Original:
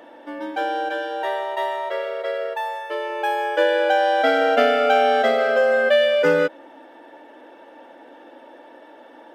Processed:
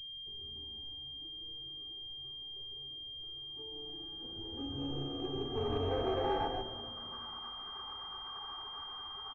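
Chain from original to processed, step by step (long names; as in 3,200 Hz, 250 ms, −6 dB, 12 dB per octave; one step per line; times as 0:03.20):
gate on every frequency bin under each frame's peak −20 dB weak
low-shelf EQ 110 Hz +5 dB
mains-hum notches 50/100/150/200/250 Hz
in parallel at +2 dB: downward compressor 5 to 1, threshold −46 dBFS, peak gain reduction 16 dB
on the sum: low-pass filter sweep 110 Hz → 1,100 Hz, 0:03.39–0:07.21
soft clipping −36 dBFS, distortion −8 dB
pitch-shifted copies added +12 semitones −16 dB
echo with shifted repeats 138 ms, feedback 37%, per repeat −140 Hz, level −3 dB
convolution reverb RT60 2.6 s, pre-delay 3 ms, DRR 13.5 dB
switching amplifier with a slow clock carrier 3,200 Hz
level +1.5 dB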